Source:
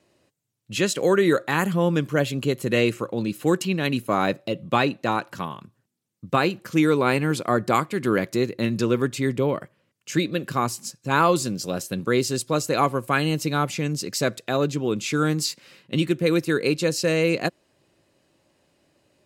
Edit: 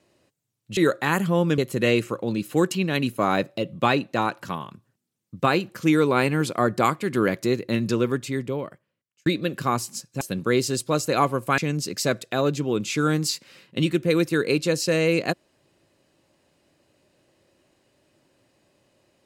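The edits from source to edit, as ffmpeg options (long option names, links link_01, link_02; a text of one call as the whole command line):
ffmpeg -i in.wav -filter_complex "[0:a]asplit=6[link_01][link_02][link_03][link_04][link_05][link_06];[link_01]atrim=end=0.772[link_07];[link_02]atrim=start=1.228:end=2.042[link_08];[link_03]atrim=start=2.478:end=10.16,asetpts=PTS-STARTPTS,afade=type=out:start_time=6.282:duration=1.4[link_09];[link_04]atrim=start=10.16:end=11.112,asetpts=PTS-STARTPTS,afade=type=in:duration=0.004:curve=hsin[link_10];[link_05]atrim=start=11.818:end=13.192[link_11];[link_06]atrim=start=13.738[link_12];[link_07][link_08]acrossfade=duration=0.004:curve1=hsin:curve2=hsin[link_13];[link_09][link_10]concat=n=2:v=0:a=1[link_14];[link_13][link_14]acrossfade=duration=0.004:curve1=hsin:curve2=hsin[link_15];[link_15][link_11]acrossfade=duration=0.004:curve1=hsin:curve2=hsin[link_16];[link_16][link_12]acrossfade=duration=0.004:curve1=hsin:curve2=hsin" out.wav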